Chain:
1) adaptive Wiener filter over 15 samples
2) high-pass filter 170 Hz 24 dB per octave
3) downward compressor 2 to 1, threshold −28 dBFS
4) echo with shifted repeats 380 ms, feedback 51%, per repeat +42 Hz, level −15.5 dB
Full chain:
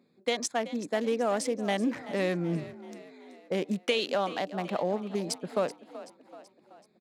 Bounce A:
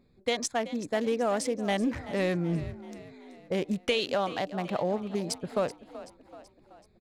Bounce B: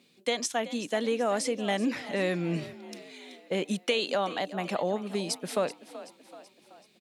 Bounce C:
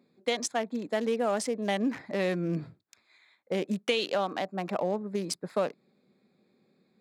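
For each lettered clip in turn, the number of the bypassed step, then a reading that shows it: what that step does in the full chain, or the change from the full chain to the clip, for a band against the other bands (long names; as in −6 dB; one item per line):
2, 125 Hz band +2.0 dB
1, 8 kHz band +2.0 dB
4, echo-to-direct ratio −14.0 dB to none audible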